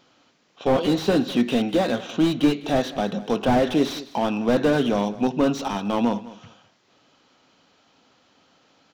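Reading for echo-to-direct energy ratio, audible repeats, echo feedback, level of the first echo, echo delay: -18.0 dB, 2, 17%, -18.0 dB, 0.204 s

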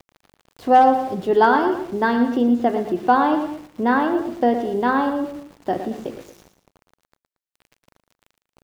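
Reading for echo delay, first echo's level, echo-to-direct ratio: 0.114 s, -10.0 dB, -9.5 dB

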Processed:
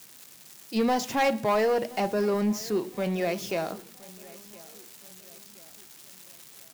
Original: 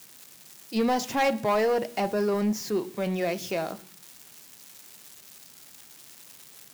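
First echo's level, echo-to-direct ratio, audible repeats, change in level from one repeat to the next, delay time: -22.0 dB, -21.0 dB, 2, -7.0 dB, 1.02 s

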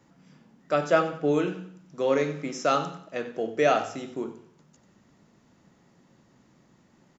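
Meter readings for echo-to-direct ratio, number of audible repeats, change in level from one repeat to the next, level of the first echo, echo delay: -13.0 dB, 3, -8.5 dB, -13.5 dB, 92 ms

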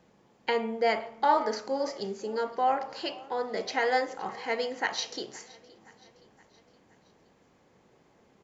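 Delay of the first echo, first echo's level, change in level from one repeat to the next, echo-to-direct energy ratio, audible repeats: 0.519 s, -22.0 dB, -5.5 dB, -20.5 dB, 3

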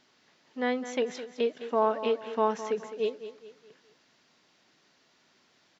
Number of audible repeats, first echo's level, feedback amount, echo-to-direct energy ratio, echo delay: 3, -12.5 dB, 40%, -12.0 dB, 0.21 s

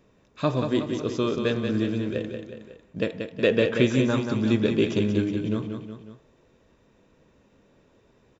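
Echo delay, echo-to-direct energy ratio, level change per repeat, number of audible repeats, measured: 0.183 s, -5.0 dB, -5.5 dB, 3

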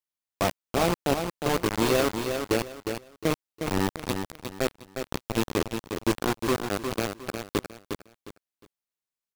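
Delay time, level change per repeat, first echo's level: 0.358 s, -11.5 dB, -6.5 dB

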